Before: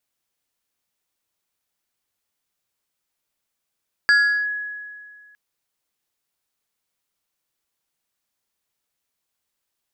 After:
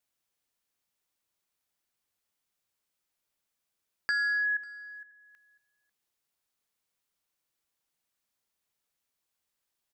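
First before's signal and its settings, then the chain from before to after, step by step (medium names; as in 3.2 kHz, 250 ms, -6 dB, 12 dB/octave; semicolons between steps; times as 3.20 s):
FM tone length 1.26 s, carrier 1.68 kHz, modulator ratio 1.84, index 0.54, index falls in 0.38 s linear, decay 1.98 s, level -10.5 dB
level held to a coarse grid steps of 14 dB; delay 545 ms -23.5 dB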